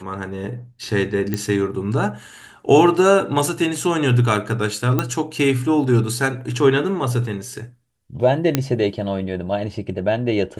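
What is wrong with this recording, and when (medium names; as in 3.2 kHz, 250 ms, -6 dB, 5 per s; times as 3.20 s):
1.34 s: pop -8 dBFS
4.99 s: pop -6 dBFS
8.55 s: pop -2 dBFS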